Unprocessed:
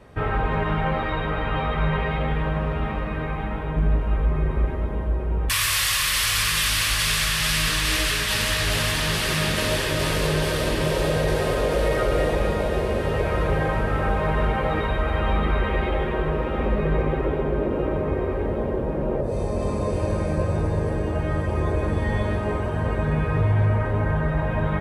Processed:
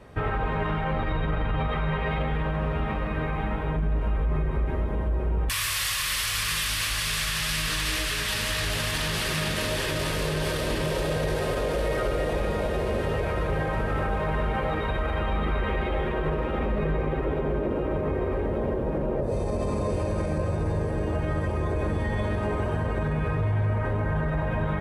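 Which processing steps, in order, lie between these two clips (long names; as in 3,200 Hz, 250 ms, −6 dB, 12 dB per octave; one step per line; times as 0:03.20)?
0:00.93–0:01.68: low-shelf EQ 220 Hz +9.5 dB
brickwall limiter −18.5 dBFS, peak gain reduction 11 dB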